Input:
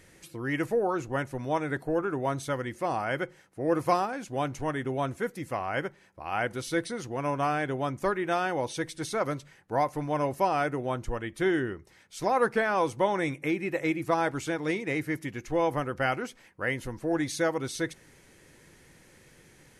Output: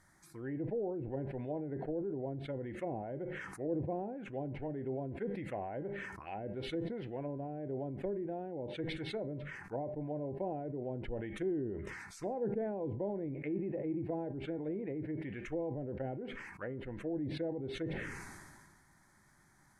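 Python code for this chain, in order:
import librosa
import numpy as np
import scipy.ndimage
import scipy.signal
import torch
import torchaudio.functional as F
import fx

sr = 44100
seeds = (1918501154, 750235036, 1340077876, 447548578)

y = fx.env_lowpass_down(x, sr, base_hz=440.0, full_db=-25.5)
y = fx.peak_eq(y, sr, hz=910.0, db=7.0, octaves=2.7)
y = fx.env_phaser(y, sr, low_hz=440.0, high_hz=1200.0, full_db=-28.5)
y = fx.comb_fb(y, sr, f0_hz=200.0, decay_s=0.37, harmonics='all', damping=0.0, mix_pct=50)
y = fx.sustainer(y, sr, db_per_s=31.0)
y = y * librosa.db_to_amplitude(-4.5)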